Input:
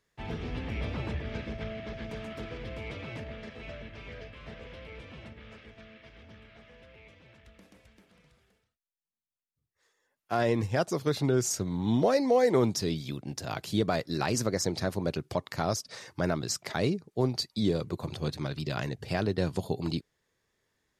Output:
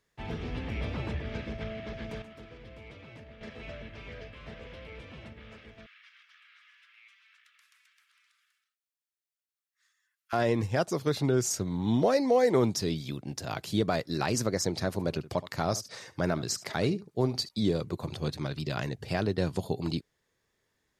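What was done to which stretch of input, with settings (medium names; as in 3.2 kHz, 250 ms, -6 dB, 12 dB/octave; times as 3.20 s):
2.22–3.41 s: gain -9 dB
5.86–10.33 s: steep high-pass 1.2 kHz 48 dB/octave
14.87–17.49 s: delay 73 ms -17 dB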